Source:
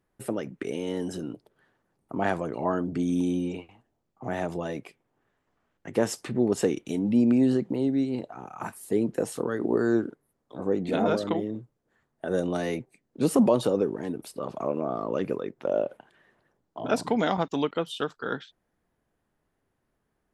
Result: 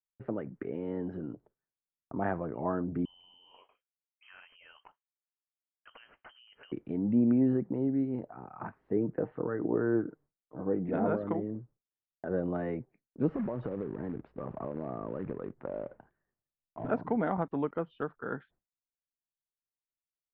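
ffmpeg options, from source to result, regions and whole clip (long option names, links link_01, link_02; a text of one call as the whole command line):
ffmpeg -i in.wav -filter_complex "[0:a]asettb=1/sr,asplit=3[link_01][link_02][link_03];[link_01]atrim=end=3.054[link_04];[link_02]atrim=start=3.05:end=6.72,asetpts=PTS-STARTPTS,afade=type=in:duration=0.004:curve=qsin,afade=type=out:start_time=3.666:duration=0.004:curve=qsin,lowpass=frequency=2800:width_type=q:width=0.5098,lowpass=frequency=2800:width_type=q:width=0.6013,lowpass=frequency=2800:width_type=q:width=0.9,lowpass=frequency=2800:width_type=q:width=2.563,afreqshift=-3300,acompressor=threshold=-35dB:ratio=4:attack=3.2:release=140:knee=1:detection=peak[link_05];[link_03]atrim=start=6.716[link_06];[link_04][link_05]acrossfade=duration=0.004:curve1=hsin:curve2=qsin[link_07];[link_07][link_06]acrossfade=duration=0.004:curve1=qsin:curve2=hsin,asettb=1/sr,asplit=3[link_08][link_09][link_10];[link_08]atrim=end=8.964[link_11];[link_09]atrim=start=8.96:end=10.89,asetpts=PTS-STARTPTS,afade=type=in:duration=0.004:curve=qsin,afade=type=out:start_time=1.926:duration=0.004:curve=qsin,lowpass=frequency=2900:width=0.5412,lowpass=frequency=2900:width=1.3066,aecho=1:1:6.5:0.31,atrim=end_sample=85113[link_12];[link_10]atrim=start=10.886[link_13];[link_11][link_12]acrossfade=duration=0.004:curve1=hsin:curve2=qsin[link_14];[link_14][link_13]acrossfade=duration=0.004:curve1=qsin:curve2=hsin,asettb=1/sr,asplit=3[link_15][link_16][link_17];[link_15]atrim=end=13.294[link_18];[link_16]atrim=start=13.29:end=16.9,asetpts=PTS-STARTPTS,afade=type=in:duration=0.004:curve=qsin,afade=type=out:start_time=3.606:duration=0.004:curve=qsin,lowshelf=frequency=110:gain=11,acompressor=threshold=-27dB:ratio=5:attack=3.2:release=140:knee=1:detection=peak,acrusher=bits=3:mode=log:mix=0:aa=0.000001[link_19];[link_17]atrim=start=16.896[link_20];[link_18][link_19]acrossfade=duration=0.004:curve1=hsin:curve2=qsin[link_21];[link_21][link_20]acrossfade=duration=0.004:curve1=qsin:curve2=hsin,agate=range=-33dB:threshold=-49dB:ratio=3:detection=peak,lowpass=frequency=1800:width=0.5412,lowpass=frequency=1800:width=1.3066,lowshelf=frequency=140:gain=7.5,volume=-6dB" out.wav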